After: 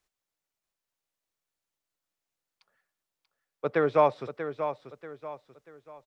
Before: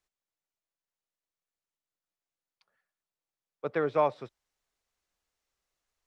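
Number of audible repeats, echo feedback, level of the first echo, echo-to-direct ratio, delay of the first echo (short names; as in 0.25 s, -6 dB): 3, 36%, -9.5 dB, -9.0 dB, 0.637 s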